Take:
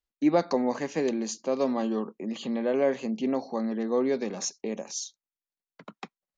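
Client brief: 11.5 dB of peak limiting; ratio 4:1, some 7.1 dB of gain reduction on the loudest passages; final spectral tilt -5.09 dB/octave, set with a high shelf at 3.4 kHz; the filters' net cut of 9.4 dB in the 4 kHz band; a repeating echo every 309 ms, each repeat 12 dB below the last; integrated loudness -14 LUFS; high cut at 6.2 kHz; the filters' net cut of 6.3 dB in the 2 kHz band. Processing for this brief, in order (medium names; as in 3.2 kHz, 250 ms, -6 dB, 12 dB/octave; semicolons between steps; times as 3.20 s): low-pass 6.2 kHz; peaking EQ 2 kHz -5 dB; treble shelf 3.4 kHz -5 dB; peaking EQ 4 kHz -6 dB; compression 4:1, threshold -26 dBFS; peak limiter -29 dBFS; feedback delay 309 ms, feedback 25%, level -12 dB; trim +24 dB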